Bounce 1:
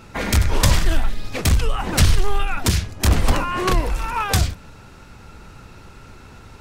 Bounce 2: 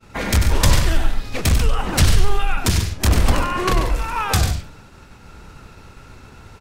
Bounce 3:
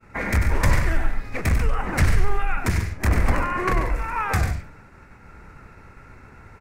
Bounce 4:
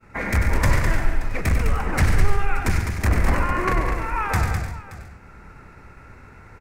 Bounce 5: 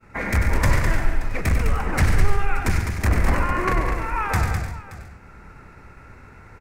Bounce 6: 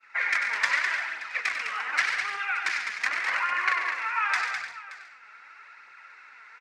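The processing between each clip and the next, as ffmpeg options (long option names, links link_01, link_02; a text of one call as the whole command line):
ffmpeg -i in.wav -af "aecho=1:1:96.21|139.9:0.398|0.282,agate=range=-33dB:threshold=-39dB:ratio=3:detection=peak" out.wav
ffmpeg -i in.wav -af "highshelf=frequency=2600:width_type=q:width=3:gain=-7,volume=-4dB" out.wav
ffmpeg -i in.wav -af "aecho=1:1:206|576:0.473|0.133" out.wav
ffmpeg -i in.wav -af anull out.wav
ffmpeg -i in.wav -af "flanger=delay=0.1:depth=4.8:regen=45:speed=0.85:shape=triangular,asuperpass=centerf=2700:order=4:qfactor=0.76,volume=8dB" out.wav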